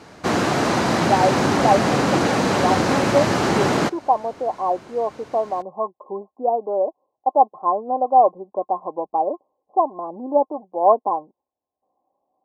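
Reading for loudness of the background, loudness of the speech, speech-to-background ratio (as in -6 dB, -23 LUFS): -19.5 LUFS, -22.5 LUFS, -3.0 dB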